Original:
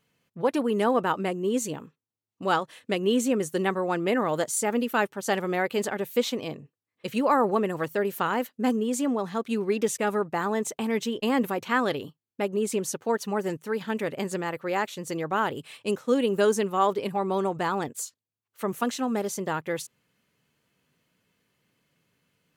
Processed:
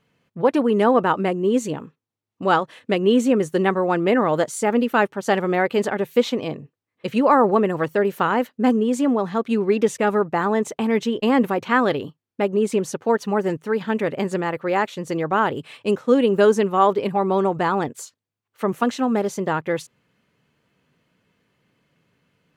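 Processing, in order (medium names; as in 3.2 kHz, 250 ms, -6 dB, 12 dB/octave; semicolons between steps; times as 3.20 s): low-pass 2.5 kHz 6 dB/octave; trim +7 dB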